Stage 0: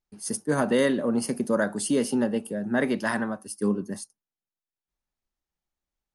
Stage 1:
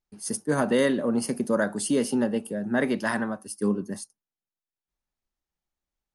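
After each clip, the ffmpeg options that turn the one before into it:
ffmpeg -i in.wav -af anull out.wav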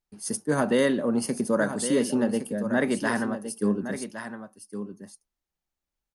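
ffmpeg -i in.wav -af "aecho=1:1:1113:0.316" out.wav

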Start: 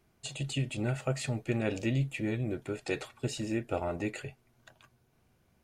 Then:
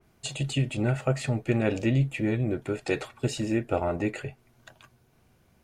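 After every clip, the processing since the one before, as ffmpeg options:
ffmpeg -i in.wav -af "adynamicequalizer=threshold=0.00224:dfrequency=2600:dqfactor=0.7:tfrequency=2600:tqfactor=0.7:attack=5:release=100:ratio=0.375:range=3.5:mode=cutabove:tftype=highshelf,volume=6dB" out.wav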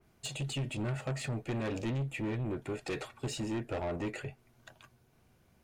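ffmpeg -i in.wav -af "asoftclip=type=tanh:threshold=-27dB,volume=-3.5dB" out.wav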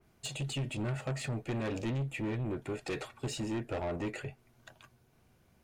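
ffmpeg -i in.wav -af anull out.wav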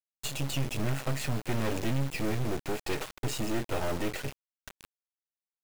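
ffmpeg -i in.wav -af "acrusher=bits=5:dc=4:mix=0:aa=0.000001,volume=8.5dB" out.wav

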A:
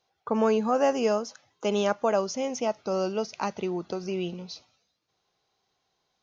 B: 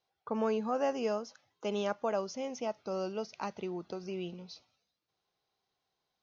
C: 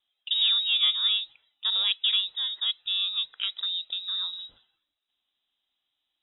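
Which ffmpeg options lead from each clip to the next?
ffmpeg -i in.wav -af "lowpass=frequency=6200:width=0.5412,lowpass=frequency=6200:width=1.3066,volume=-8dB" out.wav
ffmpeg -i in.wav -filter_complex "[0:a]asplit=2[link_01][link_02];[link_02]adynamicsmooth=sensitivity=5.5:basefreq=1300,volume=1dB[link_03];[link_01][link_03]amix=inputs=2:normalize=0,lowpass=frequency=3400:width_type=q:width=0.5098,lowpass=frequency=3400:width_type=q:width=0.6013,lowpass=frequency=3400:width_type=q:width=0.9,lowpass=frequency=3400:width_type=q:width=2.563,afreqshift=-4000,volume=1dB" out.wav

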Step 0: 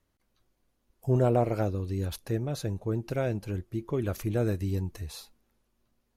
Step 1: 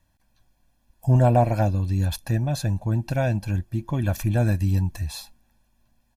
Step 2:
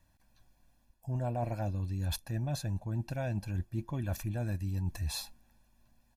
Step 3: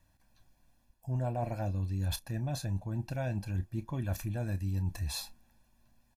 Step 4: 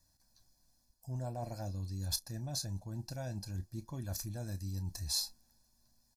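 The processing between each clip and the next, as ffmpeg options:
ffmpeg -i in.wav -af "aecho=1:1:1.2:0.87,volume=4.5dB" out.wav
ffmpeg -i in.wav -af "bandreject=frequency=3200:width=28,areverse,acompressor=threshold=-29dB:ratio=10,areverse,volume=-1.5dB" out.wav
ffmpeg -i in.wav -filter_complex "[0:a]asplit=2[link_01][link_02];[link_02]adelay=31,volume=-13dB[link_03];[link_01][link_03]amix=inputs=2:normalize=0" out.wav
ffmpeg -i in.wav -af "highshelf=frequency=3700:width_type=q:width=3:gain=9,volume=-6.5dB" out.wav

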